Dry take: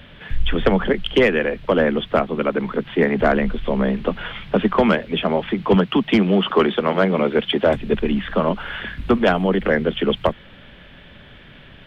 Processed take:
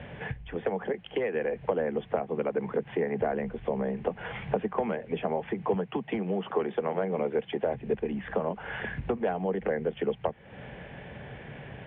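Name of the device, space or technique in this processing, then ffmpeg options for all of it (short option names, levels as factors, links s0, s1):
bass amplifier: -filter_complex "[0:a]acompressor=threshold=0.0282:ratio=6,highpass=64,equalizer=f=130:t=q:w=4:g=6,equalizer=f=270:t=q:w=4:g=-3,equalizer=f=460:t=q:w=4:g=7,equalizer=f=780:t=q:w=4:g=8,equalizer=f=1300:t=q:w=4:g=-7,lowpass=f=2400:w=0.5412,lowpass=f=2400:w=1.3066,asettb=1/sr,asplit=3[s0][s1][s2];[s0]atrim=end=0.584[s3];[s1]atrim=start=0.58:end=1.35,asetpts=PTS-STARTPTS,afade=t=in:d=0.004:c=qsin,afade=t=out:st=0.766:d=0.004:c=qsin,highpass=f=200:p=1[s4];[s2]atrim=start=1.346[s5];[s3][s4]acrossfade=d=0.004:c1=hsin:c2=qsin[s6];[s6][s5]acrossfade=d=0.004:c1=qsin:c2=hsin,volume=1.12"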